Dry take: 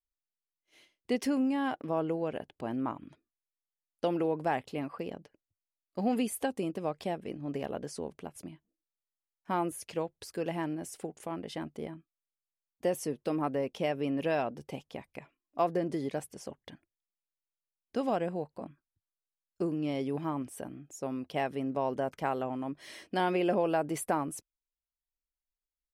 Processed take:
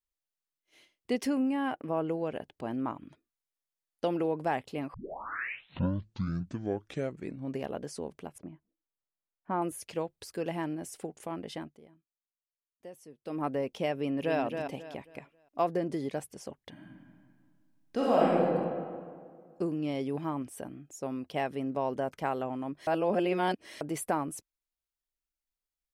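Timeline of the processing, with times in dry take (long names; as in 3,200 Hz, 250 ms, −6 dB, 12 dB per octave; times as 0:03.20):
0:01.33–0:02.05: gain on a spectral selection 3,100–7,700 Hz −7 dB
0:04.94: tape start 2.72 s
0:08.38–0:09.62: low-pass filter 1,500 Hz
0:11.54–0:13.46: duck −17 dB, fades 0.26 s
0:13.96–0:14.40: delay throw 270 ms, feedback 30%, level −6 dB
0:16.71–0:18.43: thrown reverb, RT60 2 s, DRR −6.5 dB
0:22.87–0:23.81: reverse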